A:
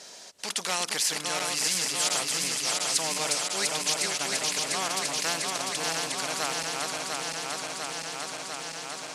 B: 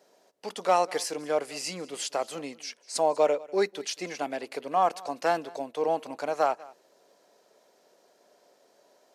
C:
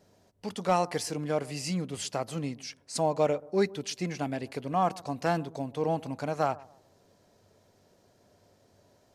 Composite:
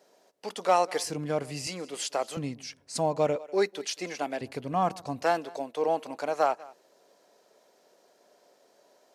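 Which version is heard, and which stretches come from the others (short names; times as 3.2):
B
1.05–1.67 from C
2.37–3.36 from C
4.41–5.23 from C
not used: A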